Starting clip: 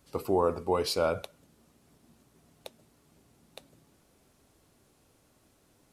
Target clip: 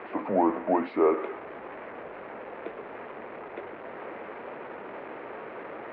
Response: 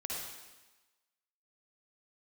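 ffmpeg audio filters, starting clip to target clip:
-af "aeval=exprs='val(0)+0.5*0.0251*sgn(val(0))':c=same,equalizer=f=660:w=0.97:g=5,highpass=f=540:t=q:w=0.5412,highpass=f=540:t=q:w=1.307,lowpass=f=2400:t=q:w=0.5176,lowpass=f=2400:t=q:w=0.7071,lowpass=f=2400:t=q:w=1.932,afreqshift=-180,volume=1.26"

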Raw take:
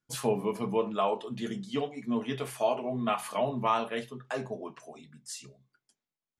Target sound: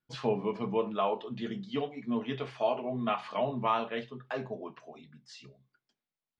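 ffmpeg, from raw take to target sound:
-af "lowpass=f=4600:w=0.5412,lowpass=f=4600:w=1.3066,volume=0.841"

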